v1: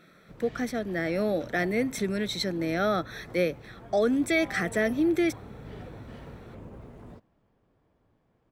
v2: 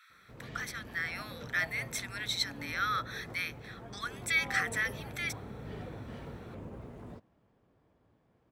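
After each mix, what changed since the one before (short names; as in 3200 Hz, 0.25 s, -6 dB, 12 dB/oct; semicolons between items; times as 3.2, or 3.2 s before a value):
speech: add steep high-pass 1000 Hz 72 dB/oct; master: add HPF 49 Hz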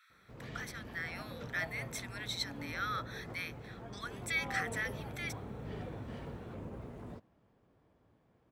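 speech -5.5 dB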